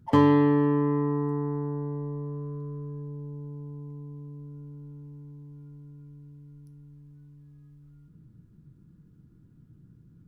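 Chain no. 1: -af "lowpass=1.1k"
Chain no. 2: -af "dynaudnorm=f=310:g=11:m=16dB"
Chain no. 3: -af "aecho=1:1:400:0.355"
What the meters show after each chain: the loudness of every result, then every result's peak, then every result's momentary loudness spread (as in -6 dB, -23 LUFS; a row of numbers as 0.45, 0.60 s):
-27.5, -25.5, -26.0 LUFS; -9.5, -9.0, -9.0 dBFS; 24, 16, 24 LU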